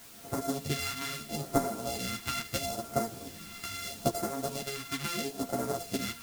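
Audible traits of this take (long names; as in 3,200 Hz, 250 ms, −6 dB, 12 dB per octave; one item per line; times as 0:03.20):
a buzz of ramps at a fixed pitch in blocks of 64 samples
phaser sweep stages 2, 0.76 Hz, lowest notch 530–2,800 Hz
a quantiser's noise floor 8 bits, dither triangular
a shimmering, thickened sound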